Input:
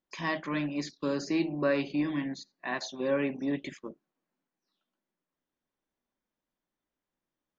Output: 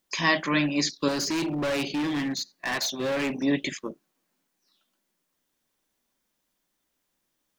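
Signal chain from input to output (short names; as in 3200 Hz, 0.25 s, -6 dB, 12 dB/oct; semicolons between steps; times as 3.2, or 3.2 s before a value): high shelf 2600 Hz +11 dB; 1.08–3.43 hard clip -31.5 dBFS, distortion -6 dB; gain +6.5 dB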